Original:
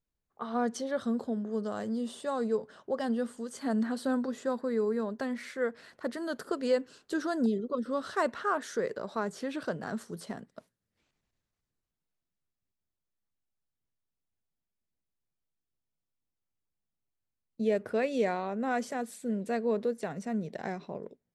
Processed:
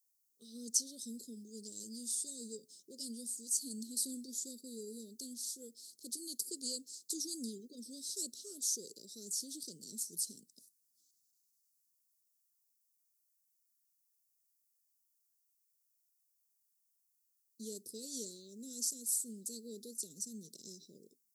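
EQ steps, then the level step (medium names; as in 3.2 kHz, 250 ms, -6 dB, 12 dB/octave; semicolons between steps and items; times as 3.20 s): inverse Chebyshev band-stop 720–2500 Hz, stop band 50 dB; differentiator; +14.0 dB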